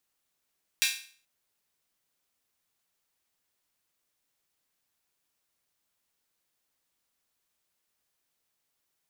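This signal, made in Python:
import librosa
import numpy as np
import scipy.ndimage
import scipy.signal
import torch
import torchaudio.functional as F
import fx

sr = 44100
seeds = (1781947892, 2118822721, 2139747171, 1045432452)

y = fx.drum_hat_open(sr, length_s=0.43, from_hz=2400.0, decay_s=0.45)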